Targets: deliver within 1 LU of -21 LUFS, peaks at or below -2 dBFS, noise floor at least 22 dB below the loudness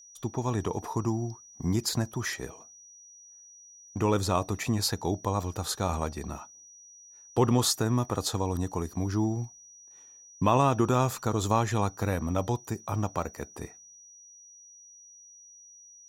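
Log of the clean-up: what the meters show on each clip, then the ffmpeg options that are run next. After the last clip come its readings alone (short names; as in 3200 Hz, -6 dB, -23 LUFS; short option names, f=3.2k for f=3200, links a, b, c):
steady tone 5800 Hz; tone level -50 dBFS; loudness -29.0 LUFS; peak -10.5 dBFS; loudness target -21.0 LUFS
-> -af "bandreject=f=5.8k:w=30"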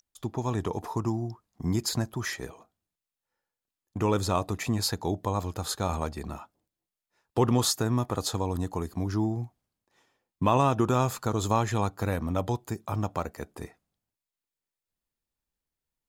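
steady tone none; loudness -29.0 LUFS; peak -10.5 dBFS; loudness target -21.0 LUFS
-> -af "volume=8dB"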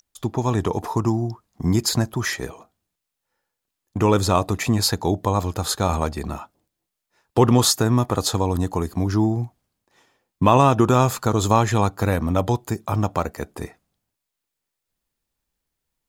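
loudness -21.0 LUFS; peak -2.5 dBFS; noise floor -83 dBFS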